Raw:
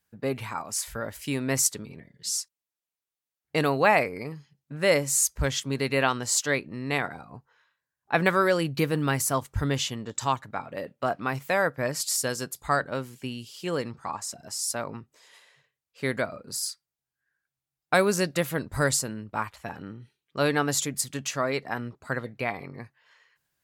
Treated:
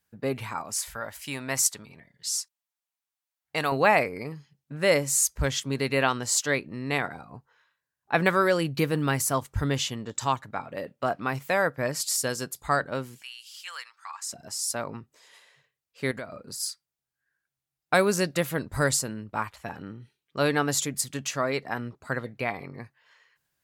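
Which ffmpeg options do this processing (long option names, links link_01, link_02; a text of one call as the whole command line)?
ffmpeg -i in.wav -filter_complex "[0:a]asettb=1/sr,asplit=3[link_01][link_02][link_03];[link_01]atrim=end=0.904[link_04];[link_02]atrim=start=0.9:end=3.72,asetpts=PTS-STARTPTS,afade=type=in:duration=0.004:curve=qsin,afade=type=out:start_time=2.816:duration=0.004:curve=qsin,lowshelf=frequency=570:width_type=q:width=1.5:gain=-7[link_05];[link_03]atrim=start=3.716[link_06];[link_04][link_05]acrossfade=duration=0.004:curve1=hsin:curve2=qsin[link_07];[link_07][link_06]acrossfade=duration=0.004:curve1=qsin:curve2=hsin,asettb=1/sr,asplit=3[link_08][link_09][link_10];[link_08]atrim=end=13.224[link_11];[link_09]atrim=start=13.22:end=14.3,asetpts=PTS-STARTPTS,afade=type=in:duration=0.004:curve=qsin,afade=type=out:start_time=1.076:duration=0.004:curve=qsin,highpass=frequency=1200:width=0.5412,highpass=frequency=1200:width=1.3066[link_12];[link_10]atrim=start=14.296[link_13];[link_11][link_12]acrossfade=duration=0.004:curve1=hsin:curve2=qsin[link_14];[link_14][link_13]acrossfade=duration=0.004:curve1=qsin:curve2=hsin,asettb=1/sr,asplit=3[link_15][link_16][link_17];[link_15]atrim=end=16.114[link_18];[link_16]atrim=start=16.11:end=16.6,asetpts=PTS-STARTPTS,afade=type=in:duration=0.004:curve=qsin,afade=type=out:start_time=0.486:duration=0.004:curve=qsin,acompressor=threshold=-35dB:ratio=3:attack=3.2:release=140:knee=1:detection=peak[link_19];[link_17]atrim=start=16.596[link_20];[link_18][link_19]acrossfade=duration=0.004:curve1=hsin:curve2=qsin[link_21];[link_21][link_20]acrossfade=duration=0.004:curve1=qsin:curve2=hsin" out.wav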